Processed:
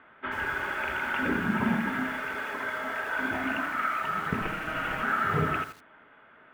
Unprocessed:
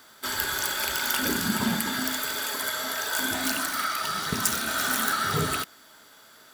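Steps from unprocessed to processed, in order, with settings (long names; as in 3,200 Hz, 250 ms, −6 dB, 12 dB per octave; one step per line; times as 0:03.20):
0:04.41–0:05.03: lower of the sound and its delayed copy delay 6.3 ms
Butterworth low-pass 2,700 Hz 48 dB per octave
hum removal 108.4 Hz, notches 9
feedback echo at a low word length 83 ms, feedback 35%, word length 7 bits, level −10.5 dB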